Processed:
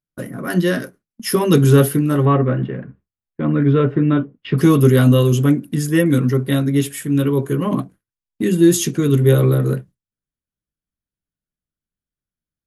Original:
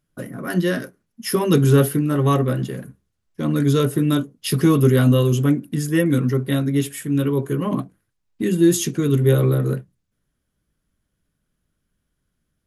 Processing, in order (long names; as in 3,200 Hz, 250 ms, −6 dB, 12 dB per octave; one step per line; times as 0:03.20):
0:02.25–0:04.58: low-pass filter 2,500 Hz 24 dB per octave
noise gate with hold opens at −35 dBFS
level +3 dB